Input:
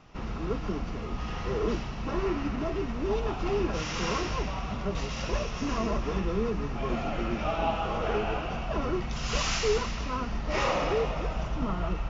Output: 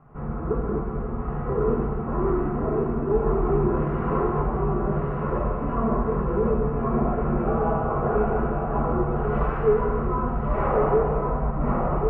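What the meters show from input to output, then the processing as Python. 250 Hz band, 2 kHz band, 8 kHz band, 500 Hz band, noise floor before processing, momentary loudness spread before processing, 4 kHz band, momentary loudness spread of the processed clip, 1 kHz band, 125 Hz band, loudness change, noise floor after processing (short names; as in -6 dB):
+6.5 dB, -3.0 dB, n/a, +7.5 dB, -35 dBFS, 6 LU, under -20 dB, 5 LU, +6.0 dB, +8.0 dB, +6.0 dB, -29 dBFS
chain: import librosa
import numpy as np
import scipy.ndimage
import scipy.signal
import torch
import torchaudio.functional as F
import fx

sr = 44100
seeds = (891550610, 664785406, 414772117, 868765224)

p1 = scipy.signal.sosfilt(scipy.signal.butter(4, 1400.0, 'lowpass', fs=sr, output='sos'), x)
p2 = p1 + fx.echo_single(p1, sr, ms=1096, db=-5.0, dry=0)
y = fx.rev_fdn(p2, sr, rt60_s=1.4, lf_ratio=0.85, hf_ratio=0.35, size_ms=41.0, drr_db=-3.0)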